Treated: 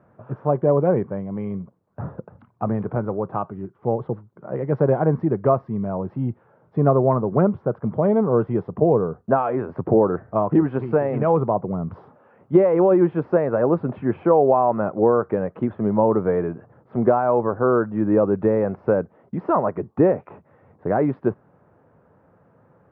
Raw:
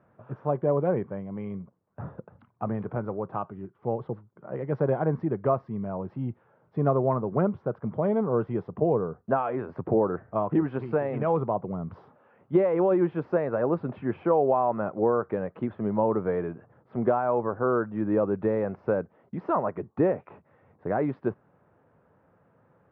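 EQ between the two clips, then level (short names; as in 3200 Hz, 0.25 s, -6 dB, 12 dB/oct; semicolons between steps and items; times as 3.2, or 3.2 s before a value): high shelf 2400 Hz -9.5 dB; +7.0 dB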